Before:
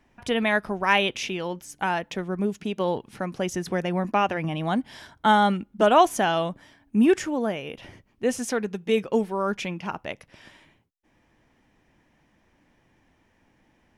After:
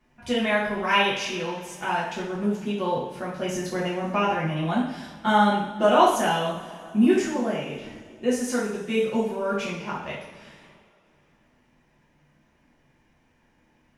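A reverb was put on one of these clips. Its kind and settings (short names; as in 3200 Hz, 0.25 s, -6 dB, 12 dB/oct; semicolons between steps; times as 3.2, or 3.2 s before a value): two-slope reverb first 0.63 s, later 2.9 s, from -18 dB, DRR -7.5 dB; gain -8 dB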